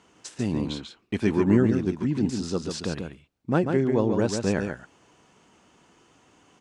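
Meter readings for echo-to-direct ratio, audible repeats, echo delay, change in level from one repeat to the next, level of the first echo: -6.0 dB, 1, 141 ms, no regular repeats, -6.0 dB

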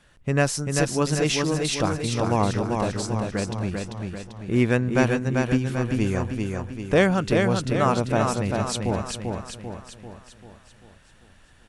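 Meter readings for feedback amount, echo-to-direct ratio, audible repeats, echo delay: 51%, -2.5 dB, 6, 392 ms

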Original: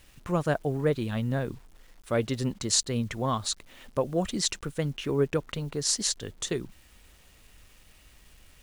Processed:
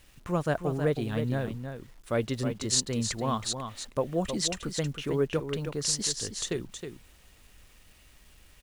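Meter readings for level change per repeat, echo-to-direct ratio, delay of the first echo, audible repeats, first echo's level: no regular repeats, -8.0 dB, 317 ms, 1, -8.0 dB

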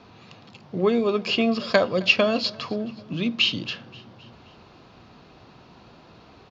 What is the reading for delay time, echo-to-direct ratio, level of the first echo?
264 ms, -20.5 dB, -22.0 dB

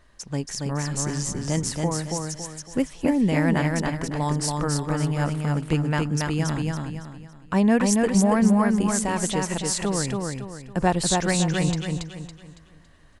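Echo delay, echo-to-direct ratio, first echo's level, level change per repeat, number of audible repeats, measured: 279 ms, -2.5 dB, -3.0 dB, -9.0 dB, 4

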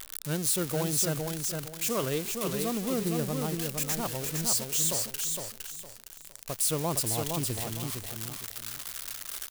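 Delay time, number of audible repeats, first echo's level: 461 ms, 3, -4.5 dB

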